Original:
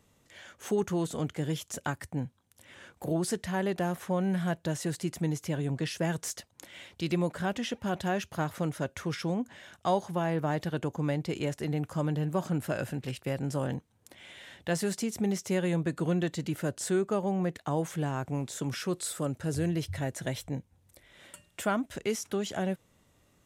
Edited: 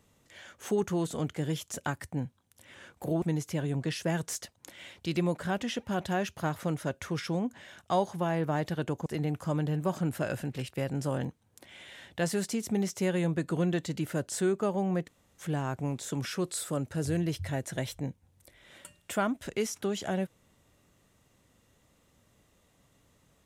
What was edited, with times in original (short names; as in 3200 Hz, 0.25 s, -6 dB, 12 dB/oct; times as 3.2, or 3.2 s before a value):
3.22–5.17 cut
11.01–11.55 cut
17.56–17.9 room tone, crossfade 0.06 s